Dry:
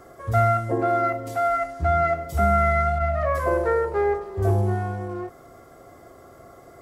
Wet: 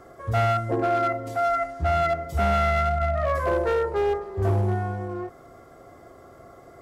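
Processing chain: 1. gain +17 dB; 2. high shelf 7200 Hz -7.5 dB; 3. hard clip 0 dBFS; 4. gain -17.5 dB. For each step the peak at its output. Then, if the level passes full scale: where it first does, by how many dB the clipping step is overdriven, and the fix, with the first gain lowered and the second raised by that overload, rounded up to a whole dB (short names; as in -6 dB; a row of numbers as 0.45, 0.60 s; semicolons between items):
+8.0, +8.0, 0.0, -17.5 dBFS; step 1, 8.0 dB; step 1 +9 dB, step 4 -9.5 dB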